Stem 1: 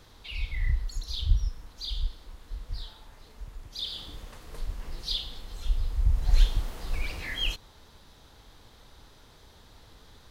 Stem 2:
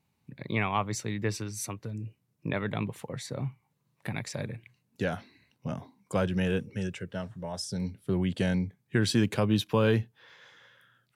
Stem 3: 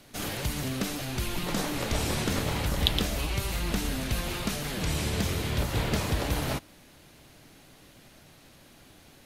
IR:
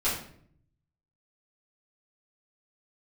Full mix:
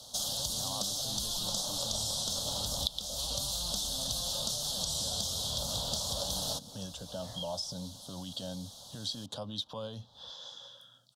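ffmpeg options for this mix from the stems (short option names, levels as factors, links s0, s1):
-filter_complex "[0:a]lowpass=f=1100:p=1,acompressor=threshold=0.0224:ratio=6,highpass=96,volume=0.75[s0];[1:a]equalizer=f=280:t=o:w=0.25:g=11.5,volume=1.06[s1];[2:a]highshelf=f=3900:g=8.5,volume=0.376[s2];[s0][s1]amix=inputs=2:normalize=0,acrossover=split=1100|3000[s3][s4][s5];[s3]acompressor=threshold=0.0158:ratio=4[s6];[s4]acompressor=threshold=0.00501:ratio=4[s7];[s5]acompressor=threshold=0.00141:ratio=4[s8];[s6][s7][s8]amix=inputs=3:normalize=0,alimiter=level_in=2.82:limit=0.0631:level=0:latency=1:release=67,volume=0.355,volume=1[s9];[s2][s9]amix=inputs=2:normalize=0,firequalizer=gain_entry='entry(220,0);entry(360,-12);entry(560,9);entry(850,6);entry(1300,-1);entry(2200,-28);entry(3300,14);entry(5300,15);entry(13000,2)':delay=0.05:min_phase=1,acompressor=threshold=0.0282:ratio=6"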